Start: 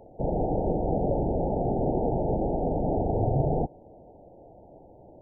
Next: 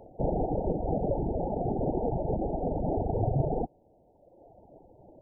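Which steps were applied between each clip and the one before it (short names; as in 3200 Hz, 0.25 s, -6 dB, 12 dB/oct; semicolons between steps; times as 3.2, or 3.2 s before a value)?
reverb removal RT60 1.6 s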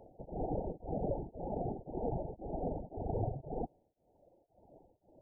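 beating tremolo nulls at 1.9 Hz; gain -6 dB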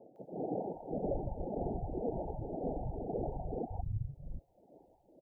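three bands offset in time mids, highs, lows 0.16/0.73 s, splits 150/770 Hz; gain +2.5 dB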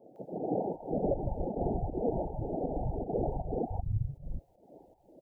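pump 158 bpm, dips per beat 1, -10 dB, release 0.156 s; gain +5.5 dB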